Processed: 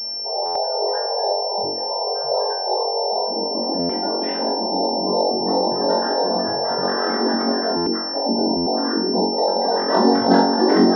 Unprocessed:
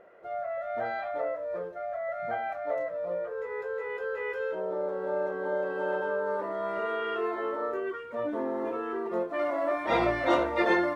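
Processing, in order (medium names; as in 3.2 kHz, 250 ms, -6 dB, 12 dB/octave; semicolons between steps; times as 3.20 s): noise-vocoded speech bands 6; spectral gate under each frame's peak -10 dB strong; bass shelf 250 Hz +10 dB; flutter echo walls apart 3.7 m, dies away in 0.53 s; buffer glitch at 0.45/3.79/7.76/8.56 s, samples 512, times 8; class-D stage that switches slowly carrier 5.4 kHz; trim +6 dB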